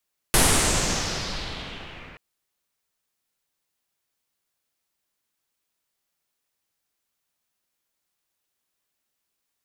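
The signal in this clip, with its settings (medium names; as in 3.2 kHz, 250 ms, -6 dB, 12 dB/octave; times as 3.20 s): swept filtered noise pink, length 1.83 s lowpass, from 11 kHz, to 2.2 kHz, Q 2.5, exponential, gain ramp -27.5 dB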